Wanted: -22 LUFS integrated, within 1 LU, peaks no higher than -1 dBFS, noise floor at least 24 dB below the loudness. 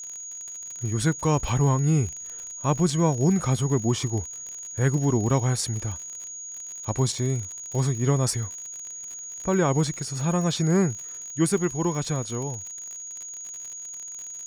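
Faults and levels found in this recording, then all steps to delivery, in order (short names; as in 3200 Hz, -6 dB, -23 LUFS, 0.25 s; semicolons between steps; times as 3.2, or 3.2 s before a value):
ticks 51/s; steady tone 6700 Hz; tone level -35 dBFS; loudness -26.0 LUFS; peak -10.0 dBFS; loudness target -22.0 LUFS
-> de-click; notch 6700 Hz, Q 30; gain +4 dB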